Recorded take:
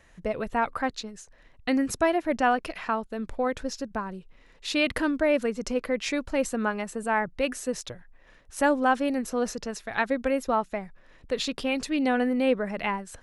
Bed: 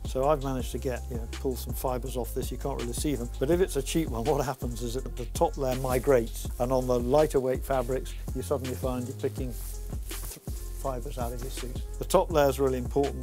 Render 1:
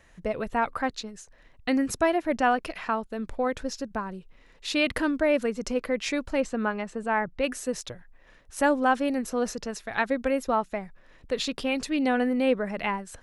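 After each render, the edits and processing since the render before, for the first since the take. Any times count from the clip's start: 6.40–7.44 s: distance through air 95 m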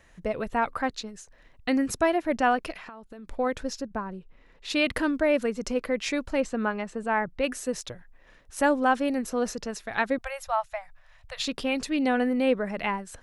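2.74–3.30 s: compression 16:1, threshold -39 dBFS; 3.80–4.69 s: treble shelf 2.8 kHz -> 4.6 kHz -11.5 dB; 10.18–11.44 s: elliptic band-stop 120–650 Hz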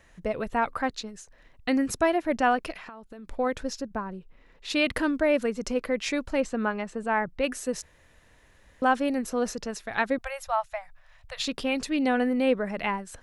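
7.82–8.82 s: room tone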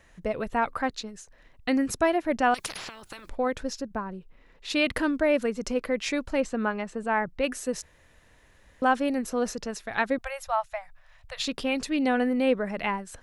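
2.54–3.29 s: spectrum-flattening compressor 10:1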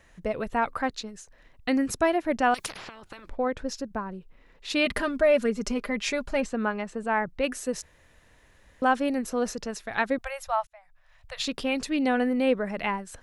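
2.70–3.69 s: low-pass 2.4 kHz 6 dB/octave; 4.85–6.46 s: comb 4.9 ms; 10.67–11.33 s: fade in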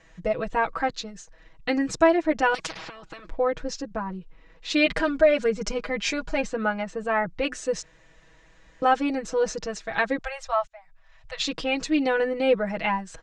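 steep low-pass 7.6 kHz 36 dB/octave; comb 6.2 ms, depth 94%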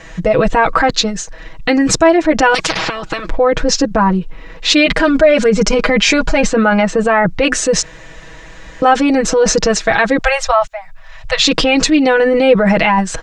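in parallel at +1 dB: compressor with a negative ratio -30 dBFS, ratio -0.5; on the sum: loudness maximiser +10.5 dB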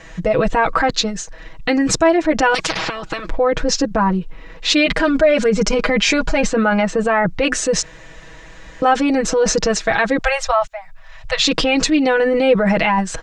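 trim -4 dB

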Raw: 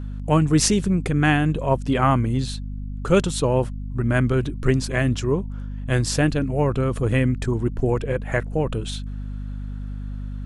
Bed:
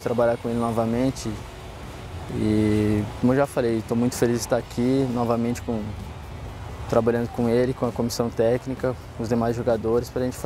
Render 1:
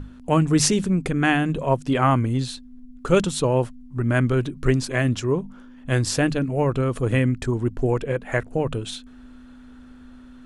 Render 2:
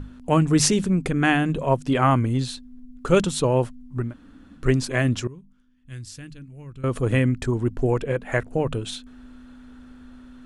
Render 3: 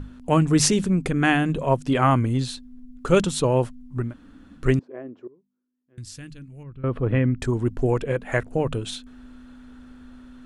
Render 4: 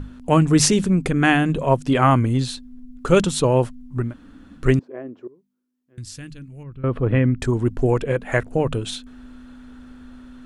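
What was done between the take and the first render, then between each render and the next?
hum notches 50/100/150/200 Hz
4.06–4.62 s: room tone, crossfade 0.16 s; 5.27–6.84 s: amplifier tone stack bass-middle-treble 6-0-2
4.79–5.98 s: ladder band-pass 450 Hz, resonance 40%; 6.63–7.40 s: distance through air 430 m
trim +3 dB; peak limiter -3 dBFS, peak gain reduction 1.5 dB

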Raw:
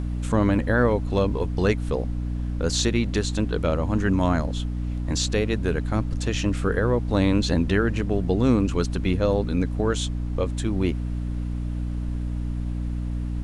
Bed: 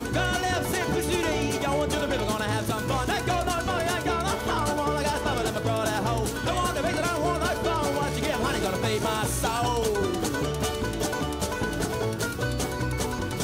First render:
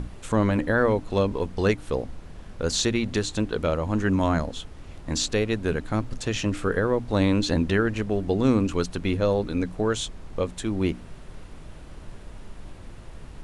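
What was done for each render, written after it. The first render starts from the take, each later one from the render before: hum notches 60/120/180/240/300 Hz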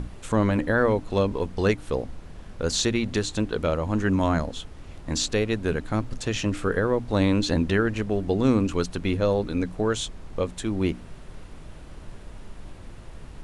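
no audible change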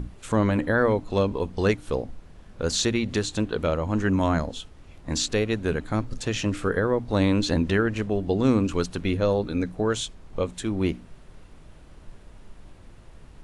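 noise print and reduce 6 dB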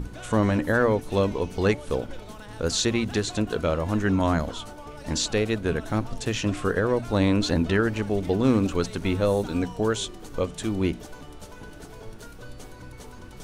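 add bed -16 dB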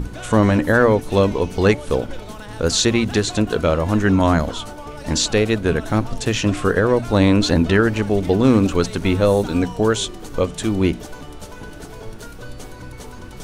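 trim +7 dB; peak limiter -2 dBFS, peak gain reduction 1 dB

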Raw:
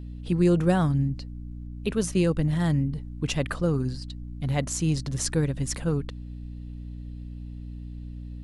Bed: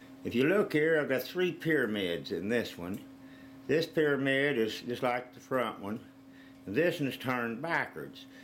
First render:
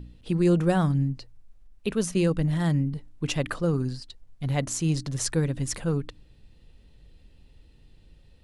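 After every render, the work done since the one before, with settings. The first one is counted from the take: de-hum 60 Hz, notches 5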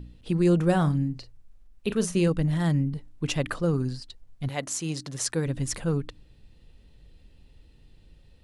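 0.65–2.28 s: doubling 40 ms -11.5 dB; 4.48–5.45 s: high-pass 560 Hz -> 200 Hz 6 dB/octave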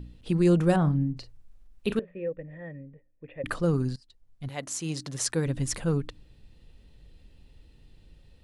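0.76–1.17 s: low-pass 1 kHz 6 dB/octave; 1.99–3.44 s: cascade formant filter e; 3.96–5.07 s: fade in, from -20 dB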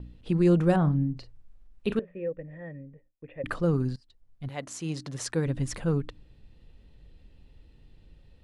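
gate with hold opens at -55 dBFS; treble shelf 4.8 kHz -10 dB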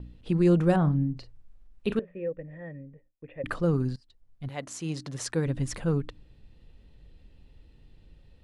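no audible change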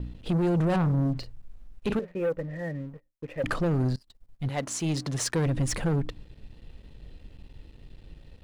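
peak limiter -20 dBFS, peak gain reduction 9 dB; waveshaping leveller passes 2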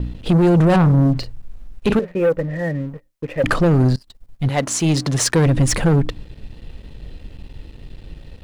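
trim +11 dB

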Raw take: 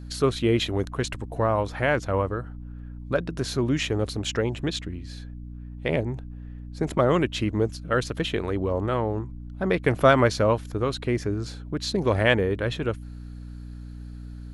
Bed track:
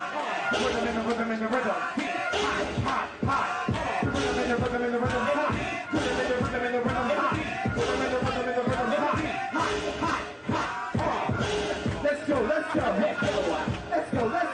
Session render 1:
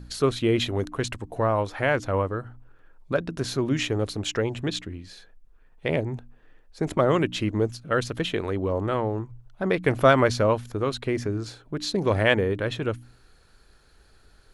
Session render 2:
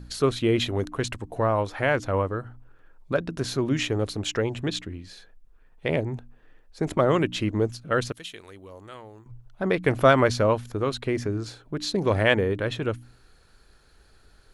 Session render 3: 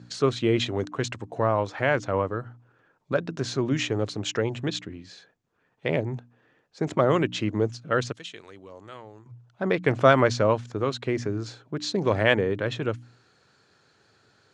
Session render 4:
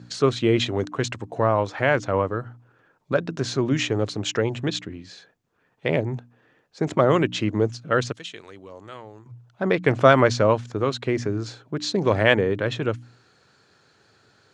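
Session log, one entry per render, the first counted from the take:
de-hum 60 Hz, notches 5
8.12–9.26 s: pre-emphasis filter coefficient 0.9
elliptic band-pass 110–7100 Hz, stop band 40 dB
trim +3 dB; peak limiter -1 dBFS, peak gain reduction 1 dB

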